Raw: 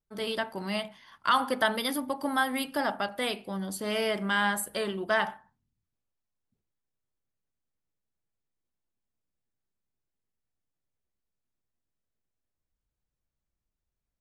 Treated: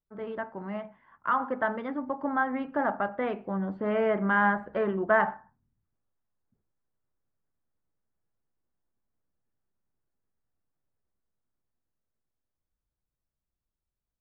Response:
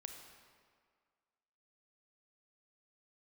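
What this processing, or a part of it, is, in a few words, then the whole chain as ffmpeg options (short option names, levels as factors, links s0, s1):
action camera in a waterproof case: -af "lowpass=f=1700:w=0.5412,lowpass=f=1700:w=1.3066,dynaudnorm=f=260:g=21:m=2.24,volume=0.75" -ar 48000 -c:a aac -b:a 96k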